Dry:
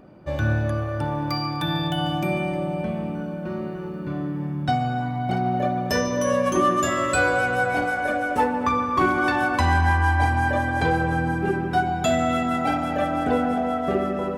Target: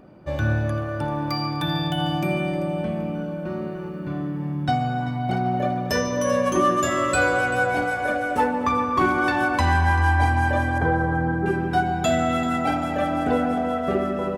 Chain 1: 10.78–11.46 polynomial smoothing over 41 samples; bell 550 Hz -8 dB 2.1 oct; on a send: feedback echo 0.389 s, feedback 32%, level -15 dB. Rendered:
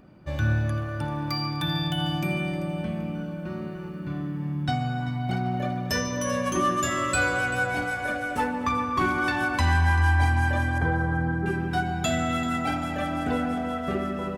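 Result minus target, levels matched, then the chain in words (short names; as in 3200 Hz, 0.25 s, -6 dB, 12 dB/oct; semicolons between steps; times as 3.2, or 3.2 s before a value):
500 Hz band -4.0 dB
10.78–11.46 polynomial smoothing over 41 samples; on a send: feedback echo 0.389 s, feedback 32%, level -15 dB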